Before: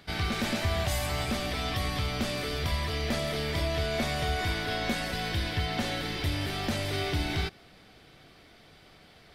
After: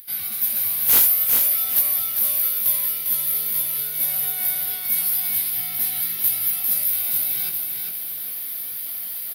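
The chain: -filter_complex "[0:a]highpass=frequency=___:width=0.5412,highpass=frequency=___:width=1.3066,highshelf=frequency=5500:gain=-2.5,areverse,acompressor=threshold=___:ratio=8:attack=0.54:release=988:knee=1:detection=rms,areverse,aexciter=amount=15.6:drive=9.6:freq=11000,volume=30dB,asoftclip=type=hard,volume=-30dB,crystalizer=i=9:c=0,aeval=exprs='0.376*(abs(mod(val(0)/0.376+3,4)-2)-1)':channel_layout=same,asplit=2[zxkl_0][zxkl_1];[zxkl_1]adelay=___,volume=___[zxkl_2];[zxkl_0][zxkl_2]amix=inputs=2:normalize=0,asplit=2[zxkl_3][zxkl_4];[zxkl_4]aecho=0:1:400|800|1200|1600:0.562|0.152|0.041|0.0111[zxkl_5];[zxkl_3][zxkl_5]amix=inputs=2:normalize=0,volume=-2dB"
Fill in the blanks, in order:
110, 110, -40dB, 19, -4.5dB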